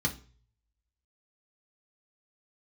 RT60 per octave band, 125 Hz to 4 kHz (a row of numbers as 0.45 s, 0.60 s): 0.85 s, 0.40 s, 0.40 s, 0.35 s, 0.35 s, 0.40 s